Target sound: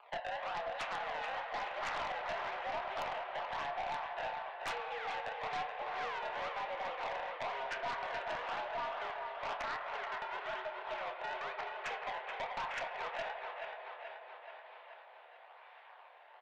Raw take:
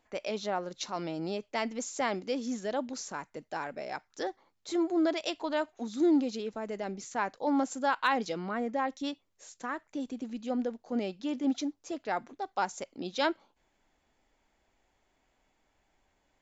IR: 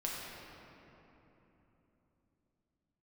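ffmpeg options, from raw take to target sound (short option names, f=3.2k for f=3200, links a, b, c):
-filter_complex "[0:a]alimiter=level_in=8.5dB:limit=-24dB:level=0:latency=1:release=418,volume=-8.5dB,acompressor=threshold=-51dB:ratio=4,acrusher=bits=5:mode=log:mix=0:aa=0.000001,crystalizer=i=1:c=0,acrusher=samples=24:mix=1:aa=0.000001:lfo=1:lforange=38.4:lforate=1,highpass=f=510:t=q:w=0.5412,highpass=f=510:t=q:w=1.307,lowpass=f=3.4k:t=q:w=0.5176,lowpass=f=3.4k:t=q:w=0.7071,lowpass=f=3.4k:t=q:w=1.932,afreqshift=130,asplit=2[a][b];[b]adelay=27,volume=-8dB[c];[a][c]amix=inputs=2:normalize=0,aecho=1:1:430|860|1290|1720|2150|2580|3010|3440:0.447|0.268|0.161|0.0965|0.0579|0.0347|0.0208|0.0125,asplit=2[d][e];[1:a]atrim=start_sample=2205,lowpass=3k[f];[e][f]afir=irnorm=-1:irlink=0,volume=-4.5dB[g];[d][g]amix=inputs=2:normalize=0,aeval=exprs='0.0168*(cos(1*acos(clip(val(0)/0.0168,-1,1)))-cos(1*PI/2))+0.00422*(cos(2*acos(clip(val(0)/0.0168,-1,1)))-cos(2*PI/2))+0.00668*(cos(5*acos(clip(val(0)/0.0168,-1,1)))-cos(5*PI/2))+0.00106*(cos(6*acos(clip(val(0)/0.0168,-1,1)))-cos(6*PI/2))+0.000531*(cos(8*acos(clip(val(0)/0.0168,-1,1)))-cos(8*PI/2))':c=same,volume=4dB"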